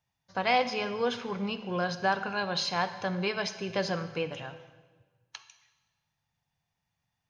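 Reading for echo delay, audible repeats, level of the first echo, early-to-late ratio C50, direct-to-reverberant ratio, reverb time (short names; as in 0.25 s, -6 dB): none, none, none, 11.5 dB, 11.0 dB, 1.3 s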